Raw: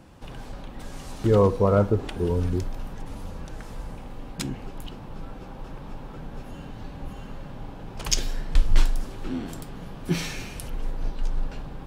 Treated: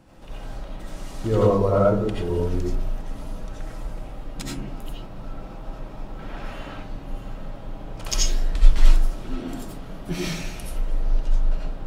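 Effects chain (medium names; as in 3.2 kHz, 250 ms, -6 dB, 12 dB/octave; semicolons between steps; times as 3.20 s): 6.19–6.74 s: peaking EQ 2.1 kHz +11.5 dB 2.6 oct; algorithmic reverb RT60 0.43 s, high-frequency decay 0.35×, pre-delay 45 ms, DRR -4.5 dB; trim -4.5 dB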